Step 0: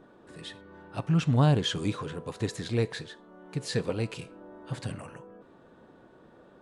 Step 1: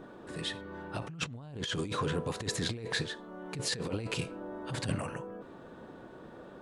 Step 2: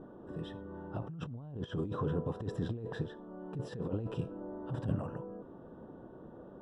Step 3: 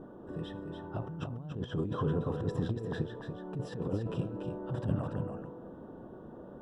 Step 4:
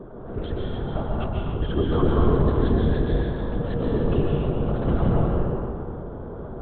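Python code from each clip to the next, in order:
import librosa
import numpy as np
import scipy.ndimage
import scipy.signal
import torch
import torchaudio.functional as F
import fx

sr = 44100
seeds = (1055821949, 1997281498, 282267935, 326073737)

y1 = fx.over_compress(x, sr, threshold_db=-36.0, ratio=-1.0)
y2 = np.convolve(y1, np.full(20, 1.0 / 20))[:len(y1)]
y2 = fx.low_shelf(y2, sr, hz=410.0, db=4.0)
y2 = y2 * 10.0 ** (-3.0 / 20.0)
y3 = y2 + 10.0 ** (-6.5 / 20.0) * np.pad(y2, (int(287 * sr / 1000.0), 0))[:len(y2)]
y3 = y3 * 10.0 ** (2.0 / 20.0)
y4 = fx.lpc_vocoder(y3, sr, seeds[0], excitation='whisper', order=8)
y4 = fx.rev_plate(y4, sr, seeds[1], rt60_s=1.9, hf_ratio=0.7, predelay_ms=115, drr_db=-3.0)
y4 = y4 * 10.0 ** (8.5 / 20.0)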